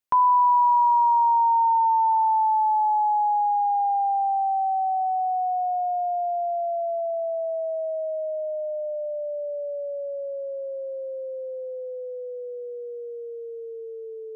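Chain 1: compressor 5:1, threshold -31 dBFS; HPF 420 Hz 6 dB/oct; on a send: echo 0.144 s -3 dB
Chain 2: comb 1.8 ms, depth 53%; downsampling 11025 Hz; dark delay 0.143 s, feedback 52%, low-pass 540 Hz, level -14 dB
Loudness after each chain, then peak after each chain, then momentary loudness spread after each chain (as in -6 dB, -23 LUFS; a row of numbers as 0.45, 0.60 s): -32.0, -24.5 LUFS; -17.5, -12.5 dBFS; 7, 14 LU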